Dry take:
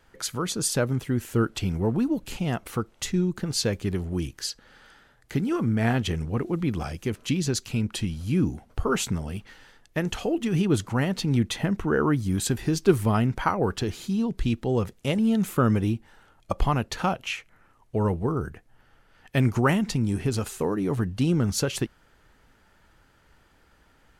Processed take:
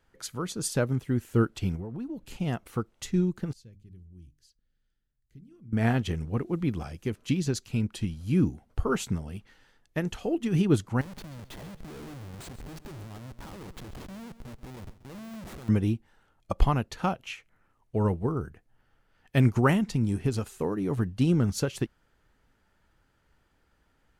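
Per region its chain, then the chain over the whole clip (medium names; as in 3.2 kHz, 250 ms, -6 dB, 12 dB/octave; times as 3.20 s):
1.75–2.27 s: treble shelf 4.8 kHz -5.5 dB + compression 10:1, threshold -27 dBFS
3.53–5.73 s: amplifier tone stack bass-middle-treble 10-0-1 + hum notches 50/100/150/200/250/300 Hz
11.01–15.69 s: compression 3:1, threshold -33 dBFS + Schmitt trigger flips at -36.5 dBFS + feedback delay 134 ms, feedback 40%, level -14.5 dB
whole clip: bass shelf 390 Hz +3 dB; upward expansion 1.5:1, over -34 dBFS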